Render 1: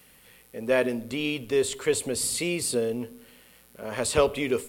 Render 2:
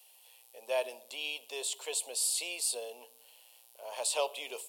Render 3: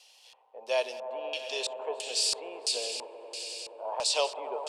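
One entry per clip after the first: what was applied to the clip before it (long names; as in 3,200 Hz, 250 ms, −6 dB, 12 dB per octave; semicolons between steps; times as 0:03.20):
Chebyshev high-pass filter 700 Hz, order 3; flat-topped bell 1,600 Hz −14.5 dB 1.1 octaves; level −2.5 dB
echo that builds up and dies away 95 ms, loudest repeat 5, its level −15 dB; harmonic generator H 5 −40 dB, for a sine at −17.5 dBFS; auto-filter low-pass square 1.5 Hz 970–5,500 Hz; level +3 dB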